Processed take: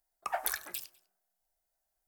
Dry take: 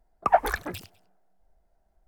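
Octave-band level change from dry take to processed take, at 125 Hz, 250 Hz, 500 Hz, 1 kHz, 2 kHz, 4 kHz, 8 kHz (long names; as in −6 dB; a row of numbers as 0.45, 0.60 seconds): below −25 dB, −21.5 dB, −16.0 dB, −14.5 dB, −8.5 dB, −1.5 dB, +5.0 dB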